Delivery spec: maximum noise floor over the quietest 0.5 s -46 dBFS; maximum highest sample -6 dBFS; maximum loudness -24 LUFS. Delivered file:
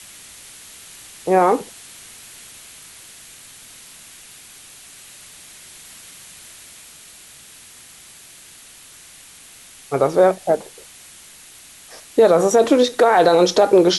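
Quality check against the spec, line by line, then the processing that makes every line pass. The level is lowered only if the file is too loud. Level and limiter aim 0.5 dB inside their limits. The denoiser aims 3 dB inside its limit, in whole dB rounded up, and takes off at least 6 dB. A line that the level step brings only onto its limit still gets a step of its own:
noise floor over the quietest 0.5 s -44 dBFS: fail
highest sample -4.0 dBFS: fail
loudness -16.0 LUFS: fail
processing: trim -8.5 dB

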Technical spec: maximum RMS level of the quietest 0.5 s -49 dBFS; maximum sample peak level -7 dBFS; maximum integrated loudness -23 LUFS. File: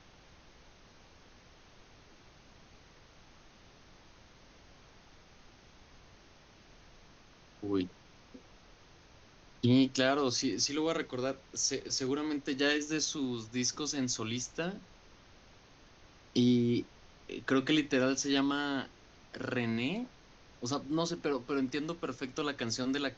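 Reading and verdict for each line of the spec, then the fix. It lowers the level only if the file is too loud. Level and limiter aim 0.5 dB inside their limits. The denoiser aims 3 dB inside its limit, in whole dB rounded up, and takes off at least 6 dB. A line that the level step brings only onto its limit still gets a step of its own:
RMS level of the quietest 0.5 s -59 dBFS: pass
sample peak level -15.5 dBFS: pass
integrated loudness -32.5 LUFS: pass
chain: none needed

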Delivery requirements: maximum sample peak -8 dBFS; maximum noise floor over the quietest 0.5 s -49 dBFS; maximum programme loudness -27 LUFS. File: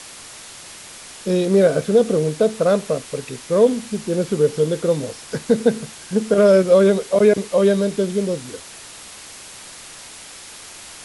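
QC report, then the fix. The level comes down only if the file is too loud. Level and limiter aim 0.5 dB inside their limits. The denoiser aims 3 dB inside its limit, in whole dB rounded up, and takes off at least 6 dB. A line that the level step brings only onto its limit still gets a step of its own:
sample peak -3.5 dBFS: fail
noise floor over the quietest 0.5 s -39 dBFS: fail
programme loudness -18.0 LUFS: fail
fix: noise reduction 6 dB, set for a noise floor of -39 dBFS; trim -9.5 dB

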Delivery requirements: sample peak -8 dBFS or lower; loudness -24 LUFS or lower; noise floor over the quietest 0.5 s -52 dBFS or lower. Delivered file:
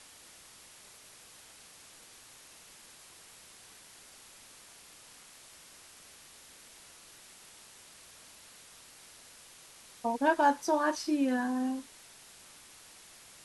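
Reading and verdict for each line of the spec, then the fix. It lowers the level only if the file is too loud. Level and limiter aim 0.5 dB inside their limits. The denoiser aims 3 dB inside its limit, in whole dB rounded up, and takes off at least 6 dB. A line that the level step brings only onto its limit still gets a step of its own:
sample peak -12.5 dBFS: pass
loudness -30.0 LUFS: pass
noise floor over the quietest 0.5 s -55 dBFS: pass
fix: none needed

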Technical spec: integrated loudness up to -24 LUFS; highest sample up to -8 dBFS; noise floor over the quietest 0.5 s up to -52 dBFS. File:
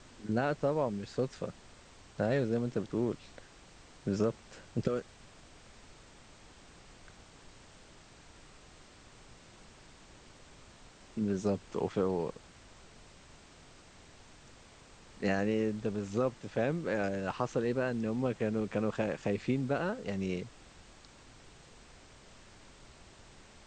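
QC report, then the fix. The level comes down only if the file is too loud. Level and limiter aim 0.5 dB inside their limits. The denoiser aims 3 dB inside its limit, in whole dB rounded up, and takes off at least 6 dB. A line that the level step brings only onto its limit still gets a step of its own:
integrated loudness -34.0 LUFS: pass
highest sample -15.0 dBFS: pass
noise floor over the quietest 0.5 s -56 dBFS: pass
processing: none needed

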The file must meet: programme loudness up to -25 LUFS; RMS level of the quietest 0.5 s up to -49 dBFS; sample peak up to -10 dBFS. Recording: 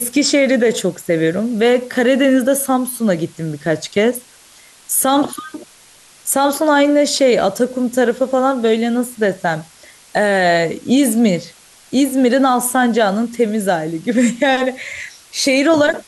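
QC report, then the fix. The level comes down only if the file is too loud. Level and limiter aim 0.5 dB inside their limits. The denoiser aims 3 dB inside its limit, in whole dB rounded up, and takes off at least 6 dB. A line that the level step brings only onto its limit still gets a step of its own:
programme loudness -16.0 LUFS: fail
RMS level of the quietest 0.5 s -46 dBFS: fail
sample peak -4.5 dBFS: fail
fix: trim -9.5 dB

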